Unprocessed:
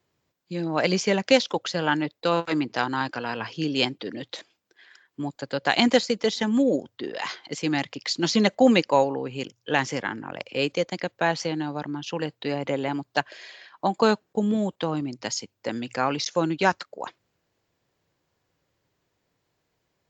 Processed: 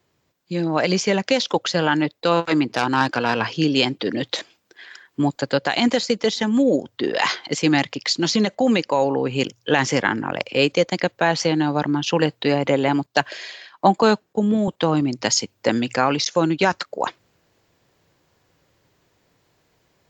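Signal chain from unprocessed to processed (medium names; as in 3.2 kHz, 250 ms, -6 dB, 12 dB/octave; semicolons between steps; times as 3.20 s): 2.70–3.45 s: self-modulated delay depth 0.094 ms; peak limiter -13 dBFS, peak gain reduction 8.5 dB; gain riding within 4 dB 0.5 s; 13.06–14.68 s: three bands expanded up and down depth 40%; trim +7 dB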